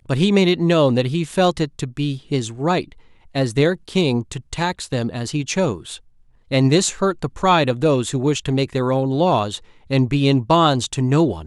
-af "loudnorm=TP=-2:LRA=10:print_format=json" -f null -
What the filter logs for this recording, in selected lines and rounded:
"input_i" : "-19.0",
"input_tp" : "-2.0",
"input_lra" : "3.4",
"input_thresh" : "-29.3",